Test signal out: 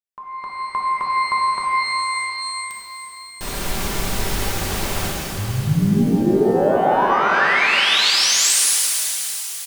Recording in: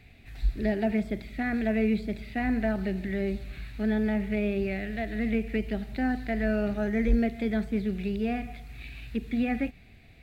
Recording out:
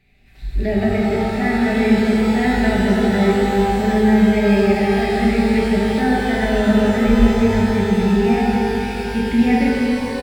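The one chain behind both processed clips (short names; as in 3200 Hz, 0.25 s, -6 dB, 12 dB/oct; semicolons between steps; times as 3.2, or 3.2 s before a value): comb 5.1 ms, depth 39%; AGC gain up to 14.5 dB; shimmer reverb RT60 3.7 s, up +12 st, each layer -8 dB, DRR -4.5 dB; gain -7.5 dB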